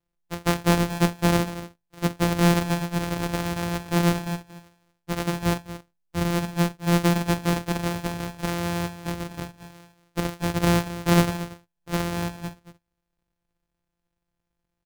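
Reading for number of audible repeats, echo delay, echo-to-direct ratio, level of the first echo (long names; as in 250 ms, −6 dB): 1, 231 ms, −14.0 dB, −14.0 dB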